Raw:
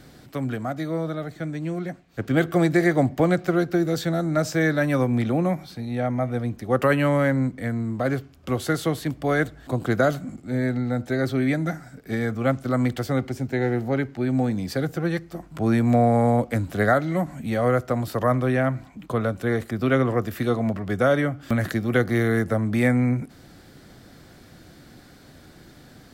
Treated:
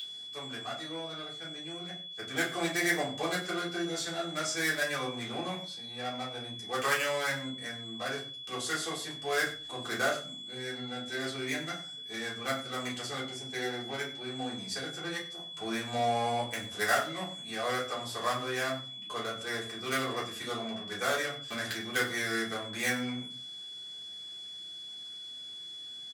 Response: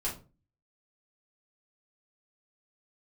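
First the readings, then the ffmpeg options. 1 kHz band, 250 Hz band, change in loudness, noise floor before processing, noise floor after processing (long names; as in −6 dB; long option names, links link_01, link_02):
−6.5 dB, −16.5 dB, −10.0 dB, −49 dBFS, −44 dBFS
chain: -filter_complex "[0:a]lowpass=frequency=8700:width=0.5412,lowpass=frequency=8700:width=1.3066,asplit=2[link_01][link_02];[link_02]adynamicsmooth=sensitivity=3:basefreq=520,volume=1dB[link_03];[link_01][link_03]amix=inputs=2:normalize=0,aeval=exprs='val(0)+0.0562*sin(2*PI*3400*n/s)':channel_layout=same,aderivative,asplit=2[link_04][link_05];[link_05]adelay=93.29,volume=-15dB,highshelf=frequency=4000:gain=-2.1[link_06];[link_04][link_06]amix=inputs=2:normalize=0[link_07];[1:a]atrim=start_sample=2205[link_08];[link_07][link_08]afir=irnorm=-1:irlink=0"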